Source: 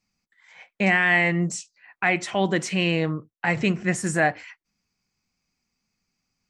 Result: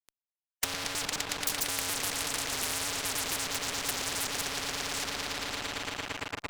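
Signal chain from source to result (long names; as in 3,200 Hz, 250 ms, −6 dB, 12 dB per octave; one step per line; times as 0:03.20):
slices reordered back to front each 105 ms, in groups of 6
spectral tilt +2.5 dB per octave
frequency shifter +100 Hz
treble cut that deepens with the level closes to 360 Hz, closed at −18.5 dBFS
drawn EQ curve 290 Hz 0 dB, 520 Hz −12 dB, 1,600 Hz −18 dB
on a send: echo that builds up and dies away 114 ms, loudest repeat 5, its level −13.5 dB
on the sum: fuzz pedal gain 43 dB, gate −50 dBFS
every bin compressed towards the loudest bin 10 to 1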